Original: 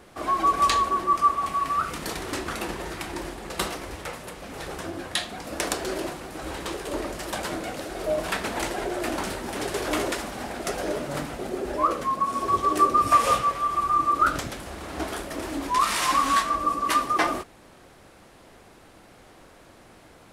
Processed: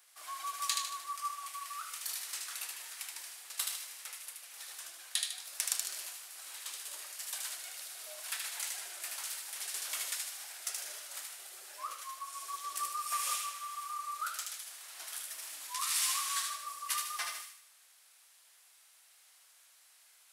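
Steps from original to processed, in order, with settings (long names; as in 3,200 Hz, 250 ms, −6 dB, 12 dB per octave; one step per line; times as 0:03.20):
sub-octave generator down 1 octave, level −4 dB
high-pass filter 750 Hz 12 dB per octave
first difference
on a send: delay with a high-pass on its return 76 ms, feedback 46%, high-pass 1,700 Hz, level −3 dB
on the sum: level −2.5 dB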